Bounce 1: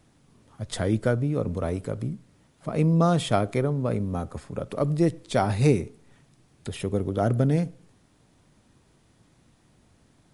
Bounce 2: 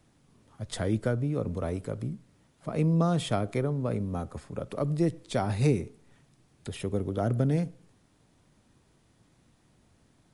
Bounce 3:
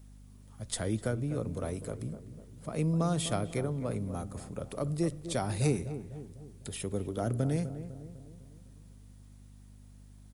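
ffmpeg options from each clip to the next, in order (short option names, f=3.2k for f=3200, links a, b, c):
-filter_complex "[0:a]acrossover=split=320[a][b];[b]acompressor=threshold=-25dB:ratio=2[c];[a][c]amix=inputs=2:normalize=0,volume=-3.5dB"
-filter_complex "[0:a]aemphasis=mode=production:type=50fm,aeval=exprs='val(0)+0.00447*(sin(2*PI*50*n/s)+sin(2*PI*2*50*n/s)/2+sin(2*PI*3*50*n/s)/3+sin(2*PI*4*50*n/s)/4+sin(2*PI*5*50*n/s)/5)':c=same,asplit=2[a][b];[b]adelay=251,lowpass=f=1.2k:p=1,volume=-11dB,asplit=2[c][d];[d]adelay=251,lowpass=f=1.2k:p=1,volume=0.53,asplit=2[e][f];[f]adelay=251,lowpass=f=1.2k:p=1,volume=0.53,asplit=2[g][h];[h]adelay=251,lowpass=f=1.2k:p=1,volume=0.53,asplit=2[i][j];[j]adelay=251,lowpass=f=1.2k:p=1,volume=0.53,asplit=2[k][l];[l]adelay=251,lowpass=f=1.2k:p=1,volume=0.53[m];[c][e][g][i][k][m]amix=inputs=6:normalize=0[n];[a][n]amix=inputs=2:normalize=0,volume=-4dB"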